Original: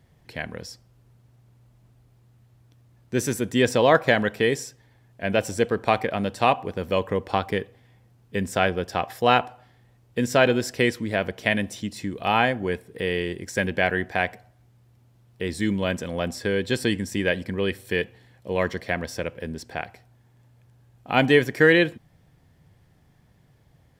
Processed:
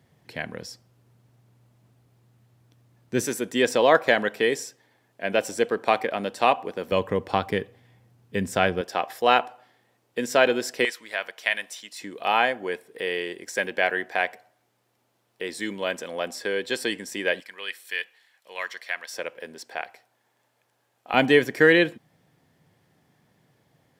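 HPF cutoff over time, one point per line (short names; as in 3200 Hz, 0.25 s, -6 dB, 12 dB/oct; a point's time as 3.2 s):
130 Hz
from 3.25 s 280 Hz
from 6.92 s 94 Hz
from 8.81 s 320 Hz
from 10.85 s 970 Hz
from 12.01 s 410 Hz
from 17.4 s 1300 Hz
from 19.13 s 510 Hz
from 21.14 s 190 Hz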